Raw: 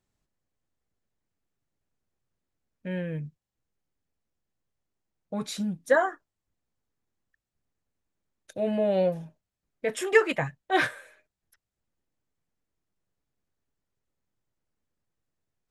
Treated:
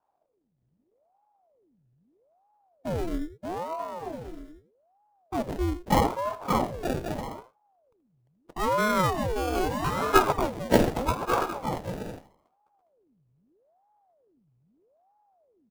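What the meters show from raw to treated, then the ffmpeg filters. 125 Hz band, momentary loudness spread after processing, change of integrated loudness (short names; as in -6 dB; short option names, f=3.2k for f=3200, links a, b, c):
+6.0 dB, 16 LU, -0.5 dB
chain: -filter_complex "[0:a]asplit=2[a][b];[b]aecho=0:1:79:0.2[c];[a][c]amix=inputs=2:normalize=0,acrusher=samples=33:mix=1:aa=0.000001:lfo=1:lforange=19.8:lforate=0.2,lowshelf=f=500:g=10.5,asplit=2[d][e];[e]aecho=0:1:580|928|1137|1262|1337:0.631|0.398|0.251|0.158|0.1[f];[d][f]amix=inputs=2:normalize=0,aeval=exprs='val(0)*sin(2*PI*480*n/s+480*0.75/0.79*sin(2*PI*0.79*n/s))':c=same,volume=-2.5dB"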